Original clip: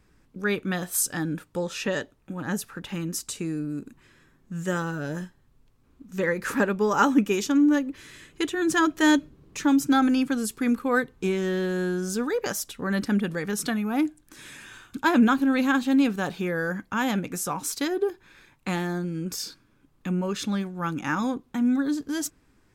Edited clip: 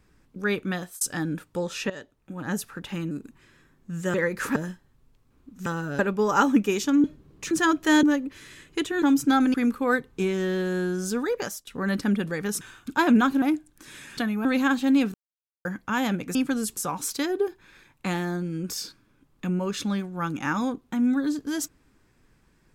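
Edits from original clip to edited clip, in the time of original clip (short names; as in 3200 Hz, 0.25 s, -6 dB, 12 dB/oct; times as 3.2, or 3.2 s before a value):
0.6–1.01 fade out equal-power
1.9–2.53 fade in linear, from -14.5 dB
3.11–3.73 cut
4.76–5.09 swap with 6.19–6.61
7.66–8.65 swap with 9.17–9.64
10.16–10.58 move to 17.39
12.29–12.71 fade out equal-power, to -24 dB
13.65–13.93 swap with 14.68–15.49
16.18–16.69 mute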